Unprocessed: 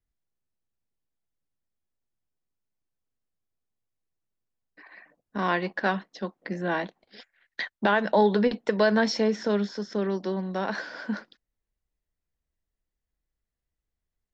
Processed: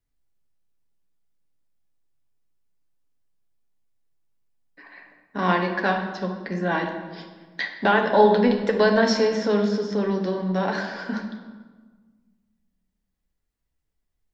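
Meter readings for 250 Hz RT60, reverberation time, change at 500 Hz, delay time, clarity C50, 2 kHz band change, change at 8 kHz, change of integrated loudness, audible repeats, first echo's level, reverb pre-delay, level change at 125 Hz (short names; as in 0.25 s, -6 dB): 2.1 s, 1.5 s, +4.5 dB, none, 6.0 dB, +3.5 dB, n/a, +4.5 dB, none, none, 7 ms, +5.0 dB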